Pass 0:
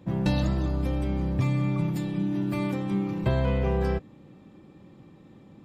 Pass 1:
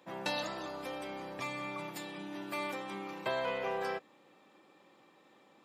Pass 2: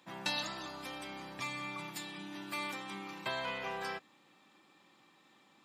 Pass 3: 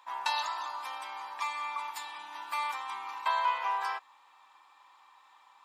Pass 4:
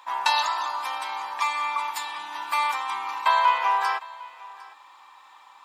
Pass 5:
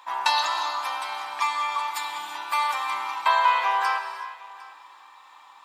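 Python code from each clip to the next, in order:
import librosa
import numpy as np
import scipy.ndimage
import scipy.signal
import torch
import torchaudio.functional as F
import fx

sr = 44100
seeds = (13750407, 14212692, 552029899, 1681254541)

y1 = scipy.signal.sosfilt(scipy.signal.butter(2, 670.0, 'highpass', fs=sr, output='sos'), x)
y2 = fx.graphic_eq(y1, sr, hz=(500, 4000, 8000), db=(-10, 3, 3))
y3 = fx.highpass_res(y2, sr, hz=960.0, q=6.0)
y4 = y3 + 10.0 ** (-21.0 / 20.0) * np.pad(y3, (int(754 * sr / 1000.0), 0))[:len(y3)]
y4 = y4 * librosa.db_to_amplitude(9.0)
y5 = fx.rev_gated(y4, sr, seeds[0], gate_ms=390, shape='flat', drr_db=6.5)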